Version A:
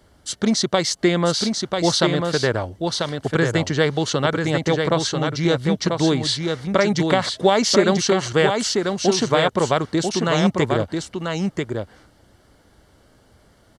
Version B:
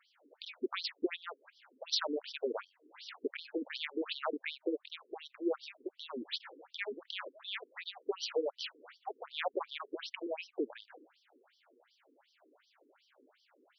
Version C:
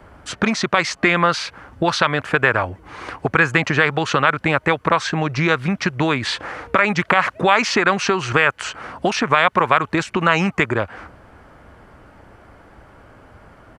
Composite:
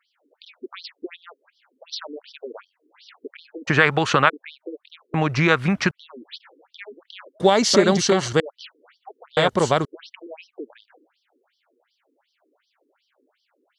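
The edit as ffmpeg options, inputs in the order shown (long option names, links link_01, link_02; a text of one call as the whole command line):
ffmpeg -i take0.wav -i take1.wav -i take2.wav -filter_complex "[2:a]asplit=2[link_01][link_02];[0:a]asplit=2[link_03][link_04];[1:a]asplit=5[link_05][link_06][link_07][link_08][link_09];[link_05]atrim=end=3.69[link_10];[link_01]atrim=start=3.67:end=4.3[link_11];[link_06]atrim=start=4.28:end=5.142[link_12];[link_02]atrim=start=5.138:end=5.912[link_13];[link_07]atrim=start=5.908:end=7.402[link_14];[link_03]atrim=start=7.398:end=8.402[link_15];[link_08]atrim=start=8.398:end=9.372[link_16];[link_04]atrim=start=9.368:end=9.852[link_17];[link_09]atrim=start=9.848[link_18];[link_10][link_11]acrossfade=duration=0.02:curve1=tri:curve2=tri[link_19];[link_19][link_12]acrossfade=duration=0.02:curve1=tri:curve2=tri[link_20];[link_20][link_13]acrossfade=duration=0.004:curve1=hsin:curve2=hsin[link_21];[link_21][link_14]acrossfade=duration=0.004:curve1=hsin:curve2=hsin[link_22];[link_22][link_15]acrossfade=duration=0.004:curve1=hsin:curve2=hsin[link_23];[link_23][link_16]acrossfade=duration=0.004:curve1=hsin:curve2=hsin[link_24];[link_24][link_17]acrossfade=duration=0.004:curve1=hsin:curve2=hsin[link_25];[link_25][link_18]acrossfade=duration=0.004:curve1=hsin:curve2=hsin" out.wav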